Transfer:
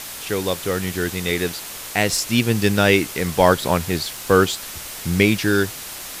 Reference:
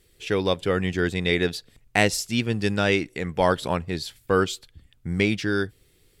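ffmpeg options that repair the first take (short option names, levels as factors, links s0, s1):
-af "afwtdn=0.025,asetnsamples=n=441:p=0,asendcmd='2.09 volume volume -6dB',volume=1"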